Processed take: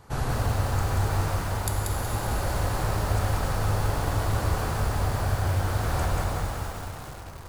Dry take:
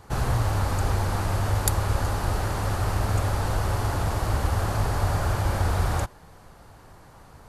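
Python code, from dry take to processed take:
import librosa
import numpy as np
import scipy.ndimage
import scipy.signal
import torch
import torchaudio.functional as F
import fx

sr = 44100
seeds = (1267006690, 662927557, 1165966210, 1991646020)

y = fx.rev_plate(x, sr, seeds[0], rt60_s=4.0, hf_ratio=0.95, predelay_ms=0, drr_db=0.0)
y = fx.rider(y, sr, range_db=5, speed_s=0.5)
y = fx.echo_crushed(y, sr, ms=185, feedback_pct=35, bits=6, wet_db=-3.0)
y = y * 10.0 ** (-5.5 / 20.0)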